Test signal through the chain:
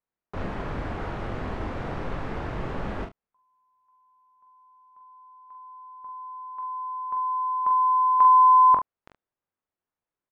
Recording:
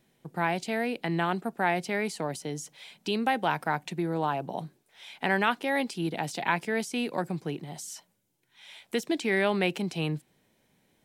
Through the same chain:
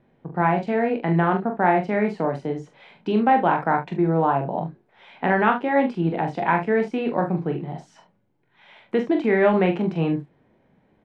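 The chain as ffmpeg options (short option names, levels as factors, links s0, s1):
-filter_complex "[0:a]lowpass=1400,asplit=2[s0][s1];[s1]aecho=0:1:23|43|72:0.355|0.501|0.2[s2];[s0][s2]amix=inputs=2:normalize=0,volume=2.37"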